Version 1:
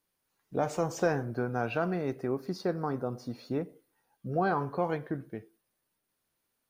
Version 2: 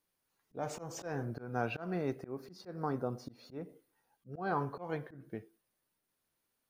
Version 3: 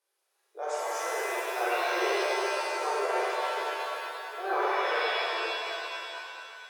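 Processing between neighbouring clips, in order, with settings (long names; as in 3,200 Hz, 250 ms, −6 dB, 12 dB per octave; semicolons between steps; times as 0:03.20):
volume swells 205 ms; level −2.5 dB
linear-phase brick-wall band-pass 340–12,000 Hz; reverb with rising layers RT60 2.7 s, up +7 semitones, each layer −2 dB, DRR −7.5 dB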